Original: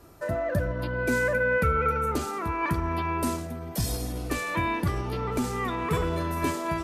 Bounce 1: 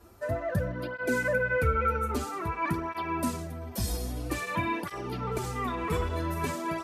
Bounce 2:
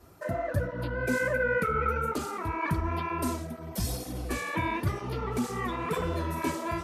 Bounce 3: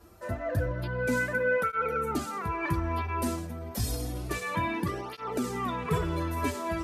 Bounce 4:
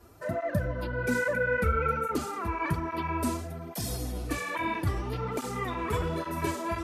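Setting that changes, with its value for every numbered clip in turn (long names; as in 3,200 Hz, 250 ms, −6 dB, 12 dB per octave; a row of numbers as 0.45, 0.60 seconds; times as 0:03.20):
through-zero flanger with one copy inverted, nulls at: 0.51, 2.1, 0.29, 1.2 Hertz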